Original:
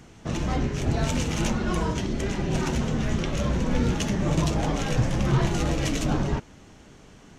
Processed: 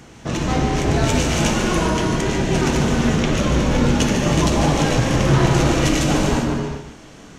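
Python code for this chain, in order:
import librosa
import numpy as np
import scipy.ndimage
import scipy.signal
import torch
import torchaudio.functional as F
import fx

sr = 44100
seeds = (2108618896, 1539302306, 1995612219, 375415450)

p1 = fx.low_shelf(x, sr, hz=130.0, db=-7.0)
p2 = p1 + fx.echo_single(p1, sr, ms=145, db=-9.0, dry=0)
p3 = fx.rev_gated(p2, sr, seeds[0], gate_ms=430, shape='flat', drr_db=1.5)
y = F.gain(torch.from_numpy(p3), 7.0).numpy()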